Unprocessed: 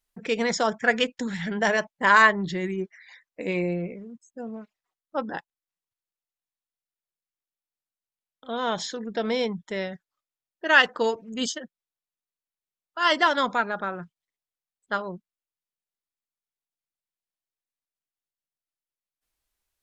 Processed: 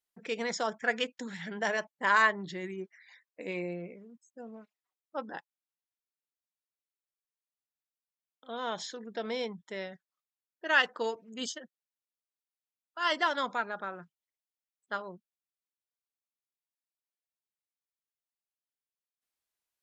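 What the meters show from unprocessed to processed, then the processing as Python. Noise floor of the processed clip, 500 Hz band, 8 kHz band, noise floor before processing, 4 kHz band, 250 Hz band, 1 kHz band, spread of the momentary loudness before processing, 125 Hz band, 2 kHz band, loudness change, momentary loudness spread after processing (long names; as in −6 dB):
below −85 dBFS, −8.5 dB, −7.5 dB, below −85 dBFS, −7.5 dB, −11.0 dB, −8.0 dB, 20 LU, −12.0 dB, −7.5 dB, −8.0 dB, 19 LU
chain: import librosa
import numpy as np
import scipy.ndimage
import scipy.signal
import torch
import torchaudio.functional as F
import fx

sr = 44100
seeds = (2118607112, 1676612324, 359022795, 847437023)

y = fx.highpass(x, sr, hz=250.0, slope=6)
y = y * librosa.db_to_amplitude(-7.5)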